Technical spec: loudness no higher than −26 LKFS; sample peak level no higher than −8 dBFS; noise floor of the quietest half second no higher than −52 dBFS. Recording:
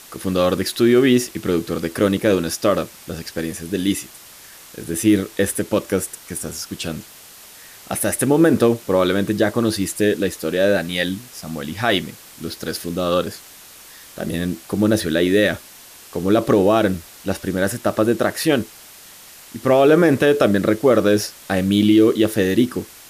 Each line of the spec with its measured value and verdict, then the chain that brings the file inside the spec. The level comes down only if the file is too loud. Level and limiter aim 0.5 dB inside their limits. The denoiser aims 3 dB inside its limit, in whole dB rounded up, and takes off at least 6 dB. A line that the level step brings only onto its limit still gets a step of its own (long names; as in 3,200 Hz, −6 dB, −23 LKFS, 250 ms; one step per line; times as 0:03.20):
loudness −19.0 LKFS: out of spec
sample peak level −5.0 dBFS: out of spec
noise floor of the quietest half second −43 dBFS: out of spec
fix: broadband denoise 6 dB, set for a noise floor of −43 dBFS
level −7.5 dB